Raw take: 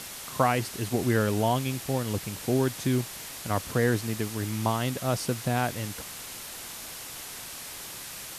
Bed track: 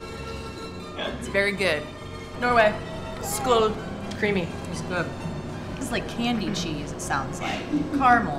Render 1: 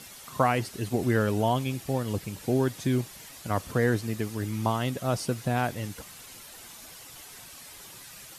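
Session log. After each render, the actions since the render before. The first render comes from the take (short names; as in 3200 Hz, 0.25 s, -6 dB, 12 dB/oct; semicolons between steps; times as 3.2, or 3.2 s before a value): denoiser 9 dB, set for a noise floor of -41 dBFS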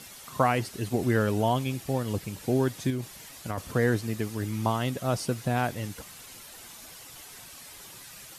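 2.9–3.58 compressor, threshold -27 dBFS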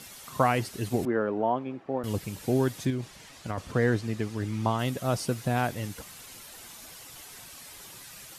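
1.05–2.04 Butterworth band-pass 590 Hz, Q 0.5; 2.85–4.79 air absorption 56 m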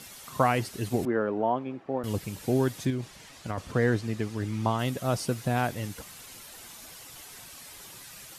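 nothing audible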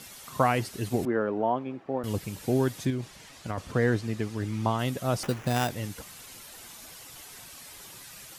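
5.23–5.7 sample-rate reducer 4300 Hz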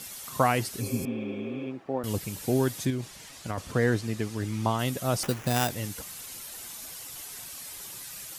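0.83–1.64 spectral repair 270–4000 Hz after; high shelf 5300 Hz +8 dB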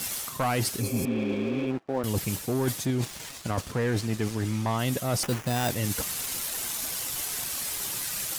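sample leveller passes 3; reverse; compressor, threshold -25 dBFS, peak gain reduction 12 dB; reverse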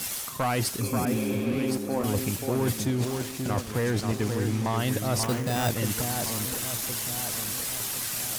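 echo with dull and thin repeats by turns 0.533 s, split 1800 Hz, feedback 68%, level -5 dB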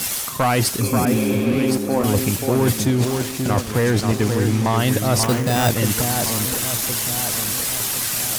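gain +8.5 dB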